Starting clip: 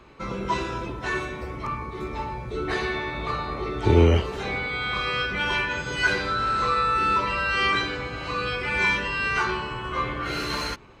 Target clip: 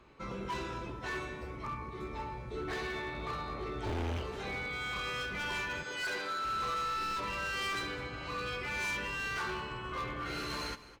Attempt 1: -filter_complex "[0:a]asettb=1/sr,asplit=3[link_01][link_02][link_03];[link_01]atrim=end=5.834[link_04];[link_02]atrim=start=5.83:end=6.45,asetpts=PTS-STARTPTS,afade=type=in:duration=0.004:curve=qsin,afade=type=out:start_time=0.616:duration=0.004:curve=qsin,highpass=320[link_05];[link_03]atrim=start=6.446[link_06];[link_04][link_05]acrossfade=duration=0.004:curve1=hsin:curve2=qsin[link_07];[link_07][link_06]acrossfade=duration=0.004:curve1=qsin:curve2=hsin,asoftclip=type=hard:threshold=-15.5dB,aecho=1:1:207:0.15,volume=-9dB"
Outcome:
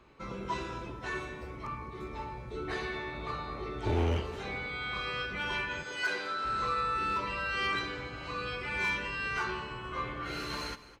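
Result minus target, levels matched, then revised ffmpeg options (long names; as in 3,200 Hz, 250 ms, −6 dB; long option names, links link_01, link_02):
hard clipping: distortion −7 dB
-filter_complex "[0:a]asettb=1/sr,asplit=3[link_01][link_02][link_03];[link_01]atrim=end=5.834[link_04];[link_02]atrim=start=5.83:end=6.45,asetpts=PTS-STARTPTS,afade=type=in:duration=0.004:curve=qsin,afade=type=out:start_time=0.616:duration=0.004:curve=qsin,highpass=320[link_05];[link_03]atrim=start=6.446[link_06];[link_04][link_05]acrossfade=duration=0.004:curve1=hsin:curve2=qsin[link_07];[link_07][link_06]acrossfade=duration=0.004:curve1=qsin:curve2=hsin,asoftclip=type=hard:threshold=-24dB,aecho=1:1:207:0.15,volume=-9dB"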